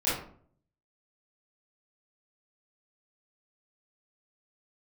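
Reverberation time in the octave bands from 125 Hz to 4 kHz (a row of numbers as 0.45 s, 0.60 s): 0.85 s, 0.65 s, 0.60 s, 0.50 s, 0.40 s, 0.30 s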